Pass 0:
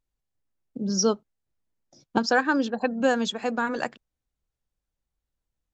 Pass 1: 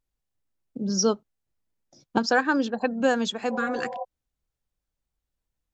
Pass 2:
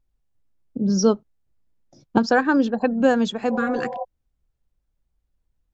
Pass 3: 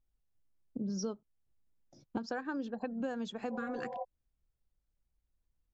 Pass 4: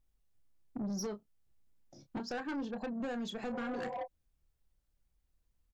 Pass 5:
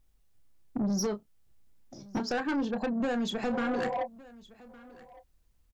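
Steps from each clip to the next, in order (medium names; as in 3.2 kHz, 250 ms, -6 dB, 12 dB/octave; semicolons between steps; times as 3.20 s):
spectral replace 3.53–4.01 s, 500–1100 Hz before
tilt EQ -2 dB/octave; trim +2.5 dB
compression 5:1, threshold -27 dBFS, peak gain reduction 14 dB; trim -8 dB
doubling 29 ms -10 dB; saturation -37 dBFS, distortion -10 dB; trim +3.5 dB
delay 1161 ms -21.5 dB; trim +8 dB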